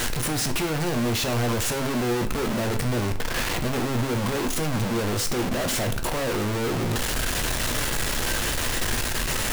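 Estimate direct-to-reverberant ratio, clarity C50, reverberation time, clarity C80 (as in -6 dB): 6.0 dB, 12.5 dB, 0.50 s, 16.0 dB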